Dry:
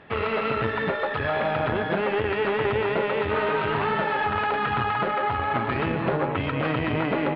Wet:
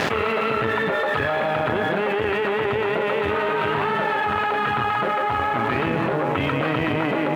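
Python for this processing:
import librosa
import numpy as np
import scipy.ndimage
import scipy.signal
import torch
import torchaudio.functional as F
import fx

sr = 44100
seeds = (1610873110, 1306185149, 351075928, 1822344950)

y = np.sign(x) * np.maximum(np.abs(x) - 10.0 ** (-52.0 / 20.0), 0.0)
y = fx.highpass(y, sr, hz=140.0, slope=6)
y = fx.env_flatten(y, sr, amount_pct=100)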